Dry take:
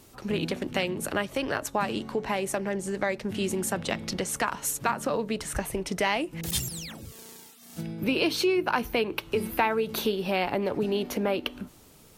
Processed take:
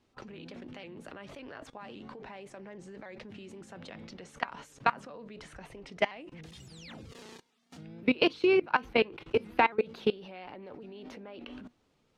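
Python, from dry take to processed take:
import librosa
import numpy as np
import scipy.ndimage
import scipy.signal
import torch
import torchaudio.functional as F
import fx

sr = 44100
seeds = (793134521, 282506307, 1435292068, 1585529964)

y = fx.level_steps(x, sr, step_db=24)
y = scipy.signal.sosfilt(scipy.signal.butter(2, 4000.0, 'lowpass', fs=sr, output='sos'), y)
y = fx.low_shelf(y, sr, hz=150.0, db=-4.0)
y = fx.comb_fb(y, sr, f0_hz=250.0, decay_s=0.15, harmonics='all', damping=0.0, mix_pct=40)
y = fx.vibrato_shape(y, sr, shape='saw_up', rate_hz=3.6, depth_cents=100.0)
y = y * librosa.db_to_amplitude(6.5)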